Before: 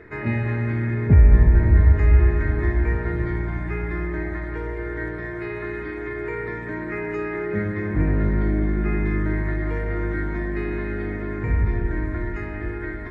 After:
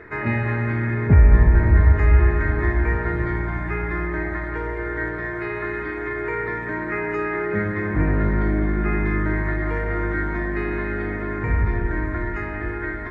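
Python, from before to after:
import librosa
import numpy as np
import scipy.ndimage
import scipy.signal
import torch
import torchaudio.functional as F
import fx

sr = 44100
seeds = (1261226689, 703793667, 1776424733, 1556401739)

y = fx.peak_eq(x, sr, hz=1200.0, db=7.0, octaves=1.9)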